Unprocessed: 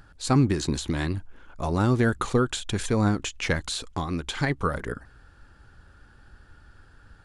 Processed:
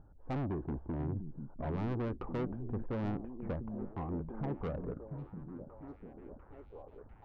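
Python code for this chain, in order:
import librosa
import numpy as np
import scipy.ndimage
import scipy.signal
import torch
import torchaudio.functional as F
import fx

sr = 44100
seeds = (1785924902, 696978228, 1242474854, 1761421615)

y = scipy.signal.sosfilt(scipy.signal.cheby2(4, 70, 3900.0, 'lowpass', fs=sr, output='sos'), x)
y = 10.0 ** (-28.0 / 20.0) * np.tanh(y / 10.0 ** (-28.0 / 20.0))
y = fx.echo_stepped(y, sr, ms=697, hz=170.0, octaves=0.7, feedback_pct=70, wet_db=-3.5)
y = y * librosa.db_to_amplitude(-5.0)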